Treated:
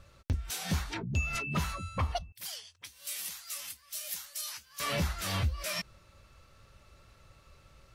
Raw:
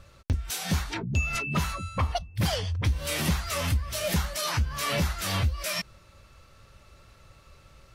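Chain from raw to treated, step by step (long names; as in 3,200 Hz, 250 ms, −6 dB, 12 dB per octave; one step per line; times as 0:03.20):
0:02.32–0:04.80: first difference
level −4.5 dB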